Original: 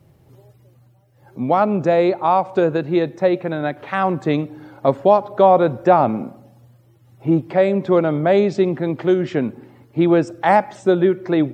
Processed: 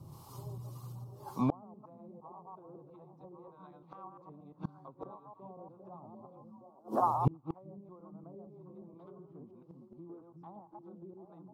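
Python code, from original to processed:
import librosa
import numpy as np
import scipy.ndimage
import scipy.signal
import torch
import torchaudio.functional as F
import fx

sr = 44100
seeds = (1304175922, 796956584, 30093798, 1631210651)

p1 = fx.reverse_delay(x, sr, ms=116, wet_db=-1.0)
p2 = fx.env_lowpass_down(p1, sr, base_hz=570.0, full_db=-10.5)
p3 = fx.low_shelf(p2, sr, hz=120.0, db=-8.5)
p4 = fx.harmonic_tremolo(p3, sr, hz=1.8, depth_pct=70, crossover_hz=640.0)
p5 = fx.curve_eq(p4, sr, hz=(110.0, 600.0, 1100.0, 1700.0, 4600.0), db=(0, -10, 8, -21, 2))
p6 = p5 + fx.echo_stepped(p5, sr, ms=368, hz=180.0, octaves=1.4, feedback_pct=70, wet_db=0.0, dry=0)
p7 = fx.gate_flip(p6, sr, shuts_db=-24.0, range_db=-35)
y = F.gain(torch.from_numpy(p7), 8.0).numpy()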